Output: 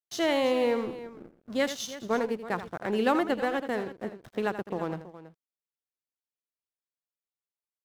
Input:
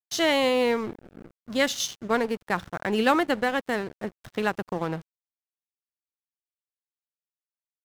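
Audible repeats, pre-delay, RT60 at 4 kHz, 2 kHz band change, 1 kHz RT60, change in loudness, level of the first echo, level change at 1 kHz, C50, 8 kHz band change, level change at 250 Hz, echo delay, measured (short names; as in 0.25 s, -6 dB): 2, none, none, -6.5 dB, none, -3.5 dB, -12.0 dB, -4.0 dB, none, -7.5 dB, -2.5 dB, 82 ms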